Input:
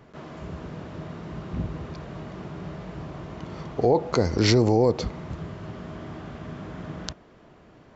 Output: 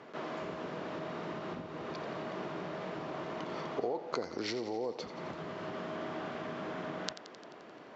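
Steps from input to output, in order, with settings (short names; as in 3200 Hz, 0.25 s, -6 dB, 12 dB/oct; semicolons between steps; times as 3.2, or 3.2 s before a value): compressor 8:1, threshold -34 dBFS, peak gain reduction 18.5 dB; BPF 310–5500 Hz; on a send: thinning echo 87 ms, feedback 67%, level -12.5 dB; on the sum: gain +3.5 dB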